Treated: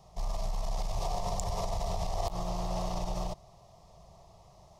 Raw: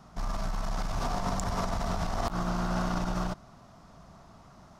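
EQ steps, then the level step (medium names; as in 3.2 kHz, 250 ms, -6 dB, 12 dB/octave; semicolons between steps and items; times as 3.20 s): static phaser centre 610 Hz, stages 4; 0.0 dB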